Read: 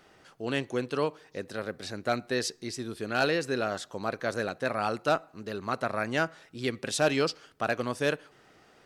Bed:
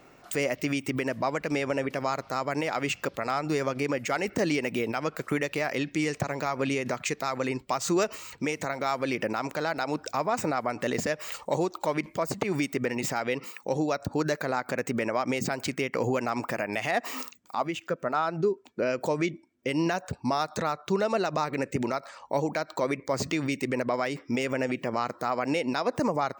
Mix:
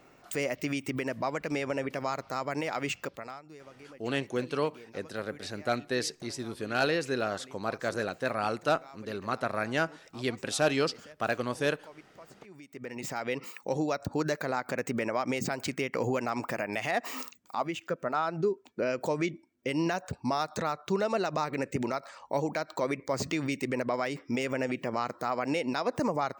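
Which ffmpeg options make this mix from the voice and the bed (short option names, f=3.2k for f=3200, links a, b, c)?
-filter_complex "[0:a]adelay=3600,volume=-1dB[a];[1:a]volume=16.5dB,afade=t=out:st=2.9:d=0.53:silence=0.112202,afade=t=in:st=12.66:d=0.73:silence=0.1[b];[a][b]amix=inputs=2:normalize=0"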